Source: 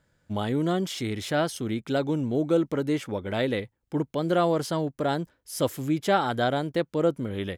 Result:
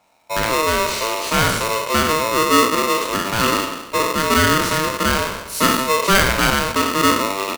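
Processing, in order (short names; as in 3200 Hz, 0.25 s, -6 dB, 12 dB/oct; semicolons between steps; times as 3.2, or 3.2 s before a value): spectral trails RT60 1.04 s; doubler 48 ms -13 dB; polarity switched at an audio rate 780 Hz; gain +6 dB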